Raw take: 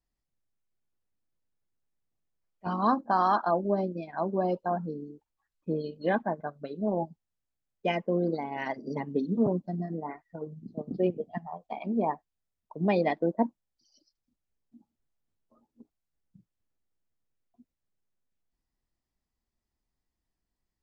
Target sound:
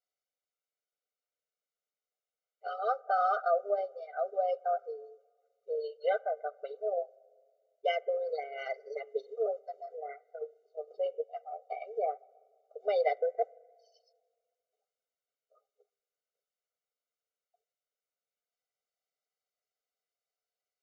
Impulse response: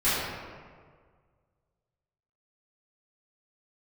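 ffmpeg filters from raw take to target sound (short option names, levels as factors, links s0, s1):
-filter_complex "[0:a]aresample=16000,aresample=44100,asplit=2[s0][s1];[1:a]atrim=start_sample=2205,lowpass=2300[s2];[s1][s2]afir=irnorm=-1:irlink=0,volume=0.0112[s3];[s0][s3]amix=inputs=2:normalize=0,afftfilt=real='re*eq(mod(floor(b*sr/1024/390),2),1)':imag='im*eq(mod(floor(b*sr/1024/390),2),1)':win_size=1024:overlap=0.75"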